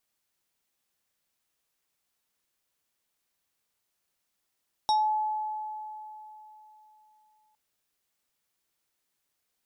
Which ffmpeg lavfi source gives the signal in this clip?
ffmpeg -f lavfi -i "aevalsrc='0.1*pow(10,-3*t/3.42)*sin(2*PI*858*t+0.74*pow(10,-3*t/0.26)*sin(2*PI*5.41*858*t))':duration=2.66:sample_rate=44100" out.wav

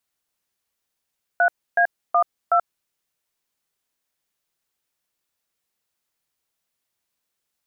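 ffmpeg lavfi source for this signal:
ffmpeg -f lavfi -i "aevalsrc='0.15*clip(min(mod(t,0.372),0.082-mod(t,0.372))/0.002,0,1)*(eq(floor(t/0.372),0)*(sin(2*PI*697*mod(t,0.372))+sin(2*PI*1477*mod(t,0.372)))+eq(floor(t/0.372),1)*(sin(2*PI*697*mod(t,0.372))+sin(2*PI*1633*mod(t,0.372)))+eq(floor(t/0.372),2)*(sin(2*PI*697*mod(t,0.372))+sin(2*PI*1209*mod(t,0.372)))+eq(floor(t/0.372),3)*(sin(2*PI*697*mod(t,0.372))+sin(2*PI*1336*mod(t,0.372))))':duration=1.488:sample_rate=44100" out.wav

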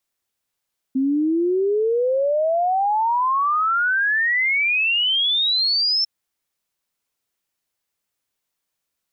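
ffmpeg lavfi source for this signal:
ffmpeg -f lavfi -i "aevalsrc='0.15*clip(min(t,5.1-t)/0.01,0,1)*sin(2*PI*260*5.1/log(5400/260)*(exp(log(5400/260)*t/5.1)-1))':duration=5.1:sample_rate=44100" out.wav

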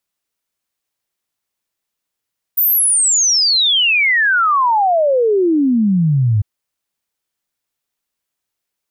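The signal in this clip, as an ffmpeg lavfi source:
ffmpeg -f lavfi -i "aevalsrc='0.299*clip(min(t,3.85-t)/0.01,0,1)*sin(2*PI*15000*3.85/log(100/15000)*(exp(log(100/15000)*t/3.85)-1))':duration=3.85:sample_rate=44100" out.wav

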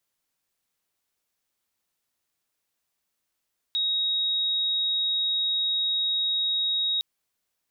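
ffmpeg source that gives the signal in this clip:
ffmpeg -f lavfi -i "sine=frequency=3780:duration=3.26:sample_rate=44100,volume=-4.44dB" out.wav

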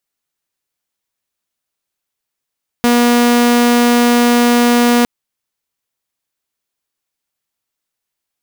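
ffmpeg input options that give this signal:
ffmpeg -f lavfi -i "aevalsrc='0.501*(2*mod(240*t,1)-1)':duration=2.21:sample_rate=44100" out.wav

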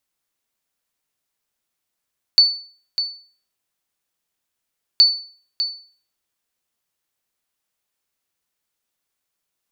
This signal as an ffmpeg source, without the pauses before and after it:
ffmpeg -f lavfi -i "aevalsrc='0.596*(sin(2*PI*4490*mod(t,2.62))*exp(-6.91*mod(t,2.62)/0.44)+0.299*sin(2*PI*4490*max(mod(t,2.62)-0.6,0))*exp(-6.91*max(mod(t,2.62)-0.6,0)/0.44))':duration=5.24:sample_rate=44100" out.wav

